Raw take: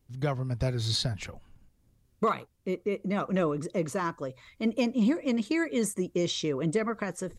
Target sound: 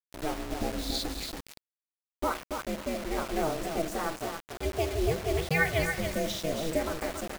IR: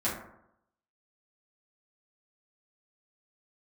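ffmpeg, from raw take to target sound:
-filter_complex "[0:a]agate=range=-33dB:threshold=-55dB:ratio=3:detection=peak,aeval=exprs='val(0)*sin(2*PI*160*n/s)':c=same,asplit=3[a][b][c];[a]afade=t=out:st=5.34:d=0.02[d];[b]equalizer=f=125:t=o:w=1:g=11,equalizer=f=250:t=o:w=1:g=-6,equalizer=f=500:t=o:w=1:g=-4,equalizer=f=1k:t=o:w=1:g=12,equalizer=f=2k:t=o:w=1:g=9,equalizer=f=4k:t=o:w=1:g=9,equalizer=f=8k:t=o:w=1:g=-10,afade=t=in:st=5.34:d=0.02,afade=t=out:st=6.07:d=0.02[e];[c]afade=t=in:st=6.07:d=0.02[f];[d][e][f]amix=inputs=3:normalize=0,aecho=1:1:281|562|843:0.473|0.114|0.0273,asplit=2[g][h];[1:a]atrim=start_sample=2205,highshelf=f=9.1k:g=8[i];[h][i]afir=irnorm=-1:irlink=0,volume=-17.5dB[j];[g][j]amix=inputs=2:normalize=0,adynamicequalizer=threshold=0.00562:dfrequency=670:dqfactor=3.2:tfrequency=670:tqfactor=3.2:attack=5:release=100:ratio=0.375:range=2.5:mode=boostabove:tftype=bell,acrusher=bits=5:mix=0:aa=0.000001,volume=-2.5dB"

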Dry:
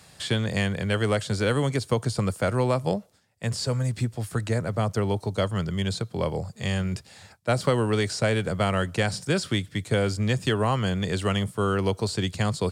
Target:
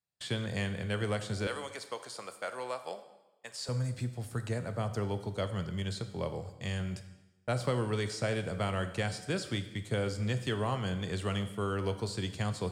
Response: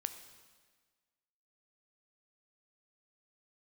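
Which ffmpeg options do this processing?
-filter_complex "[0:a]asettb=1/sr,asplit=3[a][b][c];[a]atrim=end=1.474[d];[b]atrim=start=1.47:end=3.69,asetpts=PTS-STARTPTS,afade=t=in:d=0.004:c=qsin,afade=t=out:st=2.216:d=0.004:c=qsin,highpass=640[e];[c]atrim=start=3.686[f];[d][e]acrossfade=d=0.004:c1=hsin:c2=qsin[g];[g][f]acrossfade=d=0.004:c1=qsin:c2=hsin,agate=range=-34dB:threshold=-38dB:ratio=16:detection=peak[h];[1:a]atrim=start_sample=2205,asetrate=66150,aresample=44100[i];[h][i]afir=irnorm=-1:irlink=0,volume=-4dB"

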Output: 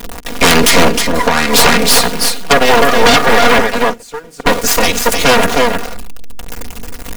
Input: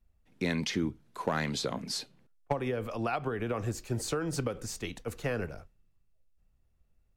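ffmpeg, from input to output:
-filter_complex "[0:a]aeval=exprs='val(0)+0.5*0.0178*sgn(val(0))':c=same,bandreject=f=50:t=h:w=6,bandreject=f=100:t=h:w=6,bandreject=f=150:t=h:w=6,bandreject=f=200:t=h:w=6,bandreject=f=250:t=h:w=6,bandreject=f=300:t=h:w=6,bandreject=f=350:t=h:w=6,bandreject=f=400:t=h:w=6,asettb=1/sr,asplit=3[a][b][c];[a]atrim=end=3.624[d];[b]atrim=start=3.62:end=4.46,asetpts=PTS-STARTPTS,afade=t=in:d=0.004:c=qsin,afade=t=out:st=0.836:d=0.004:c=qsin,agate=range=-23dB:threshold=-26dB:ratio=16:detection=peak[e];[c]atrim=start=4.456[f];[d][e]acrossfade=d=0.004:c1=hsin:c2=qsin[g];[g][f]acrossfade=d=0.004:c1=qsin:c2=hsin,aeval=exprs='0.188*(cos(1*acos(clip(val(0)/0.188,-1,1)))-cos(1*PI/2))+0.0668*(cos(6*acos(clip(val(0)/0.188,-1,1)))-cos(6*PI/2))+0.015*(cos(7*acos(clip(val(0)/0.188,-1,1)))-cos(7*PI/2))':c=same,aecho=1:1:4.2:0.83,aecho=1:1:312:0.473,asettb=1/sr,asplit=3[h][i][j];[h]atrim=end=0.884[k];[i]atrim=start=0.88:end=1.53,asetpts=PTS-STARTPTS,afade=t=in:d=0.004:c=qsin,afade=t=out:st=0.646:d=0.004:c=qsin,acompressor=threshold=-26dB:ratio=6[l];[j]atrim=start=1.526[m];[k][l]acrossfade=d=0.004:c1=hsin:c2=qsin[n];[n][m]acrossfade=d=0.004:c1=qsin:c2=hsin,lowshelf=f=280:g=-8.5,aeval=exprs='0.355*sin(PI/2*4.47*val(0)/0.355)':c=same,volume=7.5dB"

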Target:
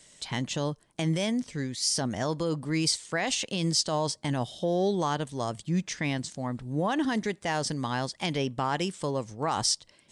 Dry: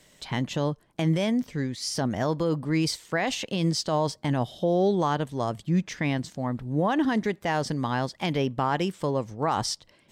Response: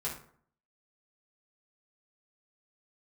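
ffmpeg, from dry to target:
-af "aresample=22050,aresample=44100,acontrast=23,crystalizer=i=2.5:c=0,volume=-8.5dB"

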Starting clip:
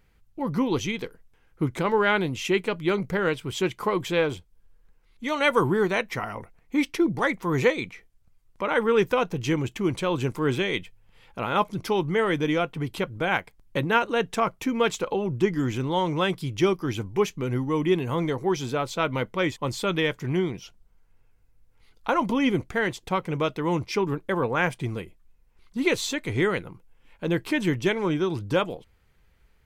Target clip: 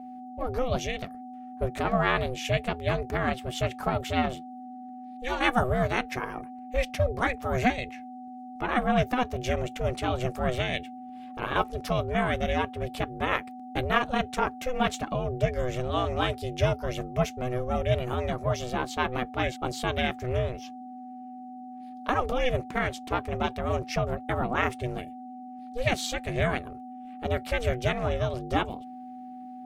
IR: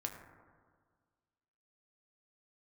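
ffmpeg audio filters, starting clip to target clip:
-af "aeval=exprs='val(0)+0.0158*sin(2*PI*500*n/s)':c=same,aeval=exprs='val(0)*sin(2*PI*250*n/s)':c=same"

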